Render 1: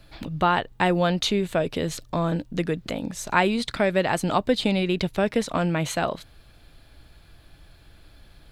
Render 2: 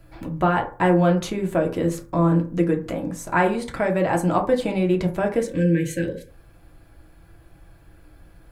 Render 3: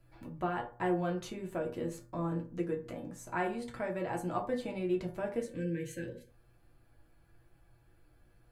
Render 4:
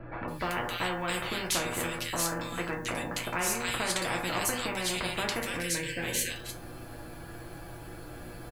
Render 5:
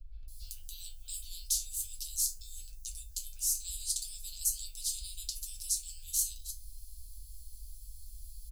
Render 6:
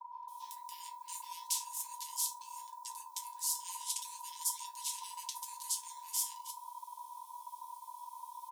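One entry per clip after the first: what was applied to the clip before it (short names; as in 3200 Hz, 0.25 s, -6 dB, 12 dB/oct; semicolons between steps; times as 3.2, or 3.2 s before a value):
spectral gain 5.4–6.29, 570–1500 Hz -30 dB; bell 3800 Hz -13 dB 1.2 oct; on a send at -1 dB: reverb RT60 0.40 s, pre-delay 3 ms
resonator 120 Hz, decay 0.18 s, harmonics all, mix 80%; gain -7.5 dB
bands offset in time lows, highs 0.28 s, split 2100 Hz; spectral compressor 4:1; gain +7 dB
inverse Chebyshev band-stop 140–2100 Hz, stop band 50 dB; bell 8300 Hz -3 dB 2.8 oct; gain +4.5 dB
ring modulator 970 Hz; gain -1 dB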